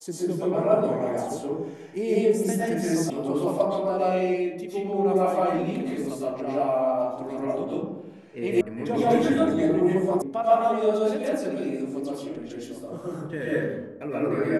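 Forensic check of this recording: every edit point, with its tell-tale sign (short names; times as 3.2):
3.1 sound cut off
8.61 sound cut off
10.22 sound cut off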